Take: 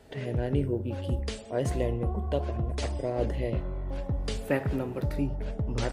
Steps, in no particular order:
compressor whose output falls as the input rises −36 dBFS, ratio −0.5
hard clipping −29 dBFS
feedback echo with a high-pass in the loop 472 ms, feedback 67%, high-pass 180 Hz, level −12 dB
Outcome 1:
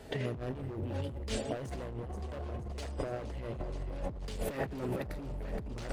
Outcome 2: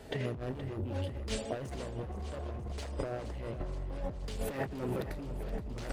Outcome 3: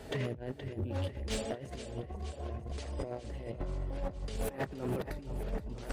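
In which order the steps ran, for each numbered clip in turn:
feedback echo with a high-pass in the loop, then hard clipping, then compressor whose output falls as the input rises
hard clipping, then compressor whose output falls as the input rises, then feedback echo with a high-pass in the loop
compressor whose output falls as the input rises, then feedback echo with a high-pass in the loop, then hard clipping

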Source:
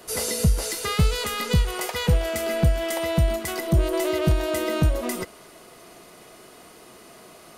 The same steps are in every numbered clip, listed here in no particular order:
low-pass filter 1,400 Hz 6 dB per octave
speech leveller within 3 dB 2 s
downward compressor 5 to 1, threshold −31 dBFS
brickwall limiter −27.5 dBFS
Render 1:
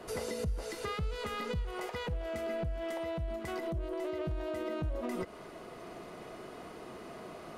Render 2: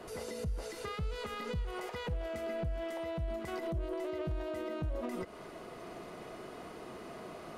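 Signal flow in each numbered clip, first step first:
downward compressor, then low-pass filter, then brickwall limiter, then speech leveller
speech leveller, then downward compressor, then brickwall limiter, then low-pass filter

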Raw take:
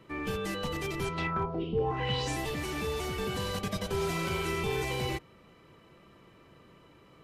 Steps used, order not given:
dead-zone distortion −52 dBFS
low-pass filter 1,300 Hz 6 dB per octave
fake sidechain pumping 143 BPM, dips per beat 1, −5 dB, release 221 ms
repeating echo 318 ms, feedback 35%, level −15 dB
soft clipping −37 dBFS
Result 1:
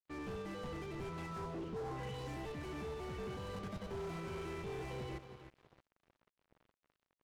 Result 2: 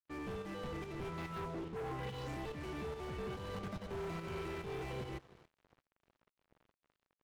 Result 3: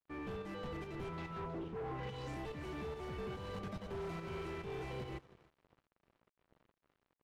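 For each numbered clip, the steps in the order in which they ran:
fake sidechain pumping, then repeating echo, then soft clipping, then low-pass filter, then dead-zone distortion
low-pass filter, then soft clipping, then repeating echo, then fake sidechain pumping, then dead-zone distortion
soft clipping, then fake sidechain pumping, then repeating echo, then dead-zone distortion, then low-pass filter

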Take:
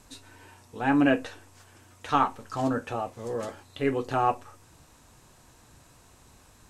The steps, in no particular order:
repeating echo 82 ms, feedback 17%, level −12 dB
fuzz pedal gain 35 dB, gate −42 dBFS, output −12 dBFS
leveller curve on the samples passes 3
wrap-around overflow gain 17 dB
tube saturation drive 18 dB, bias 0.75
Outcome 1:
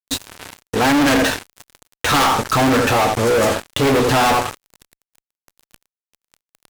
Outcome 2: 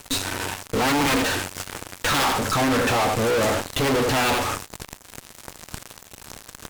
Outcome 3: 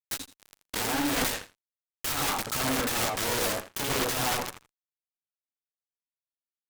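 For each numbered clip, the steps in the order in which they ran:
repeating echo, then tube saturation, then wrap-around overflow, then leveller curve on the samples, then fuzz pedal
wrap-around overflow, then leveller curve on the samples, then repeating echo, then fuzz pedal, then tube saturation
fuzz pedal, then leveller curve on the samples, then repeating echo, then wrap-around overflow, then tube saturation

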